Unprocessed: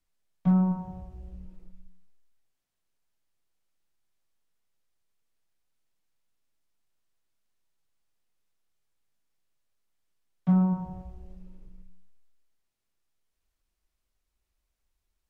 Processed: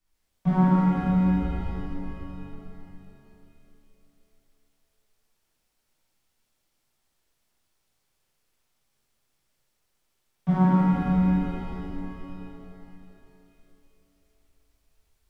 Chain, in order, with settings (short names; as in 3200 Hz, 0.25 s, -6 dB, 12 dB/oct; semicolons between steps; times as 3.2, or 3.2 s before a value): tracing distortion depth 0.077 ms; shimmer reverb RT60 3.2 s, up +7 st, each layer -8 dB, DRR -11 dB; gain -1.5 dB